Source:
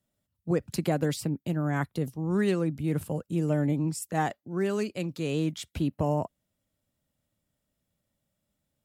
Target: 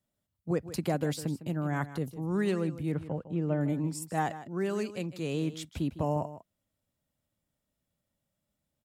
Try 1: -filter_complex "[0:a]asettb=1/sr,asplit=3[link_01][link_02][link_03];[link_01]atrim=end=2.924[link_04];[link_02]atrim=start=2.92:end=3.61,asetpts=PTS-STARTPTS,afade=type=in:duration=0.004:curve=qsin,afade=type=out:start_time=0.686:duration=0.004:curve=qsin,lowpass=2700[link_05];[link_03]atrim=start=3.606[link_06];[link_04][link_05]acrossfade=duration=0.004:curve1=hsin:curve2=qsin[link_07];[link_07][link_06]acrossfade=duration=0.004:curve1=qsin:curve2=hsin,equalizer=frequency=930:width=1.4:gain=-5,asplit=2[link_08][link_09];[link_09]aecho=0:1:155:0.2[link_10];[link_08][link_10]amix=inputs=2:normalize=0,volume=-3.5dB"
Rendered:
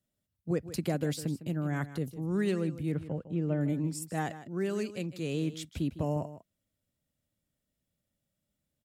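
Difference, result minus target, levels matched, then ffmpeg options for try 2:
1,000 Hz band −5.0 dB
-filter_complex "[0:a]asettb=1/sr,asplit=3[link_01][link_02][link_03];[link_01]atrim=end=2.924[link_04];[link_02]atrim=start=2.92:end=3.61,asetpts=PTS-STARTPTS,afade=type=in:duration=0.004:curve=qsin,afade=type=out:start_time=0.686:duration=0.004:curve=qsin,lowpass=2700[link_05];[link_03]atrim=start=3.606[link_06];[link_04][link_05]acrossfade=duration=0.004:curve1=hsin:curve2=qsin[link_07];[link_07][link_06]acrossfade=duration=0.004:curve1=qsin:curve2=hsin,equalizer=frequency=930:width=1.4:gain=2,asplit=2[link_08][link_09];[link_09]aecho=0:1:155:0.2[link_10];[link_08][link_10]amix=inputs=2:normalize=0,volume=-3.5dB"

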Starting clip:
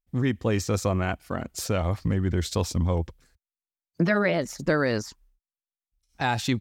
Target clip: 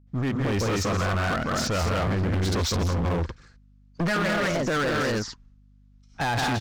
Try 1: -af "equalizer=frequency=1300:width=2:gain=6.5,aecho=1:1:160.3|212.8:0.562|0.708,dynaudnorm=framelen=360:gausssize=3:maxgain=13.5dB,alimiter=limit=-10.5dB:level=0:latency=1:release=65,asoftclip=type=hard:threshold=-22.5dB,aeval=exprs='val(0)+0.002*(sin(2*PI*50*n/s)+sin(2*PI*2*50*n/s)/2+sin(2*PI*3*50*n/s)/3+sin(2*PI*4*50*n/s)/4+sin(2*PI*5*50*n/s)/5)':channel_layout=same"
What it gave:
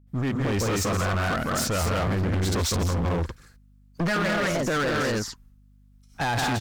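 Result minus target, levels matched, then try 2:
8,000 Hz band +3.5 dB
-af "lowpass=frequency=6300:width=0.5412,lowpass=frequency=6300:width=1.3066,equalizer=frequency=1300:width=2:gain=6.5,aecho=1:1:160.3|212.8:0.562|0.708,dynaudnorm=framelen=360:gausssize=3:maxgain=13.5dB,alimiter=limit=-10.5dB:level=0:latency=1:release=65,asoftclip=type=hard:threshold=-22.5dB,aeval=exprs='val(0)+0.002*(sin(2*PI*50*n/s)+sin(2*PI*2*50*n/s)/2+sin(2*PI*3*50*n/s)/3+sin(2*PI*4*50*n/s)/4+sin(2*PI*5*50*n/s)/5)':channel_layout=same"

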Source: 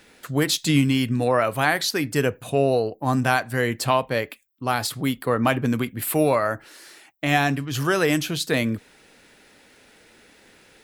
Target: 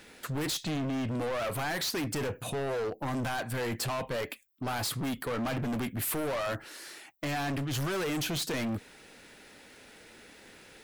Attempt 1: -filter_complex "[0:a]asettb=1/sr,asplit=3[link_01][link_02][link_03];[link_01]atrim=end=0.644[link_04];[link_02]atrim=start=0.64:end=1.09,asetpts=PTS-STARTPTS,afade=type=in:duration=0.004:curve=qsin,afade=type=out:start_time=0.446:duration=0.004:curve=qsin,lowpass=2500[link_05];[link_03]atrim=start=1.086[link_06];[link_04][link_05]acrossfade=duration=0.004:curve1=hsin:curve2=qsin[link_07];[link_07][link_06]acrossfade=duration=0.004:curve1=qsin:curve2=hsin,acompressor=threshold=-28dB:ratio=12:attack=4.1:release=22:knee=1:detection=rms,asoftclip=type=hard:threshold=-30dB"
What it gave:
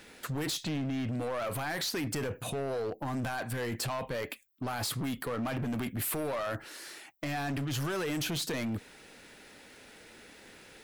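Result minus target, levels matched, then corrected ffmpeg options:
downward compressor: peak gain reduction +5.5 dB
-filter_complex "[0:a]asettb=1/sr,asplit=3[link_01][link_02][link_03];[link_01]atrim=end=0.644[link_04];[link_02]atrim=start=0.64:end=1.09,asetpts=PTS-STARTPTS,afade=type=in:duration=0.004:curve=qsin,afade=type=out:start_time=0.446:duration=0.004:curve=qsin,lowpass=2500[link_05];[link_03]atrim=start=1.086[link_06];[link_04][link_05]acrossfade=duration=0.004:curve1=hsin:curve2=qsin[link_07];[link_07][link_06]acrossfade=duration=0.004:curve1=qsin:curve2=hsin,acompressor=threshold=-22dB:ratio=12:attack=4.1:release=22:knee=1:detection=rms,asoftclip=type=hard:threshold=-30dB"

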